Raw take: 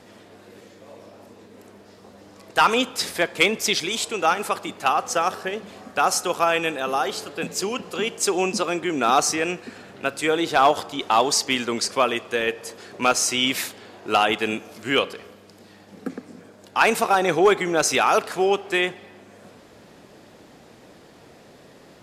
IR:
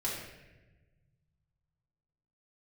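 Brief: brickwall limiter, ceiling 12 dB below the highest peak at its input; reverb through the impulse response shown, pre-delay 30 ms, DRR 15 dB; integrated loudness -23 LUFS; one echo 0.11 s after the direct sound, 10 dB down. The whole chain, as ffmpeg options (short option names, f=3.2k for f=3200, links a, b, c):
-filter_complex "[0:a]alimiter=limit=-19.5dB:level=0:latency=1,aecho=1:1:110:0.316,asplit=2[a][b];[1:a]atrim=start_sample=2205,adelay=30[c];[b][c]afir=irnorm=-1:irlink=0,volume=-19.5dB[d];[a][d]amix=inputs=2:normalize=0,volume=6.5dB"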